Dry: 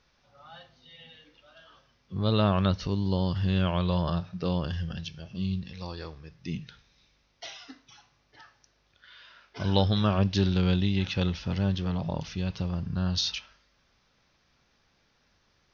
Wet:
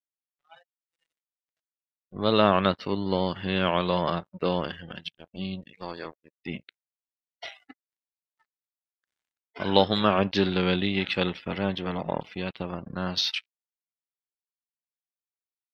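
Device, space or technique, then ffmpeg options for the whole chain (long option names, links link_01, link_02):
pocket radio on a weak battery: -af "highpass=270,lowpass=3800,aeval=exprs='sgn(val(0))*max(abs(val(0))-0.00422,0)':channel_layout=same,equalizer=frequency=2100:width_type=o:width=0.43:gain=4.5,afftdn=noise_reduction=26:noise_floor=-53,volume=7.5dB"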